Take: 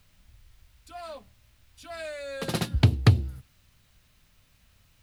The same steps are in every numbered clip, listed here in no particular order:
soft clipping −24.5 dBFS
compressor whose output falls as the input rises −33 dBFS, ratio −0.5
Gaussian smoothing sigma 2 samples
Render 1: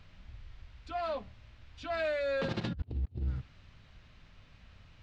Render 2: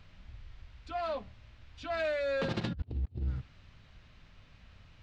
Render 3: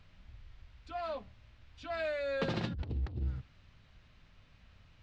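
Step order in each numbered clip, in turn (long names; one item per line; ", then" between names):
compressor whose output falls as the input rises, then soft clipping, then Gaussian smoothing
Gaussian smoothing, then compressor whose output falls as the input rises, then soft clipping
soft clipping, then Gaussian smoothing, then compressor whose output falls as the input rises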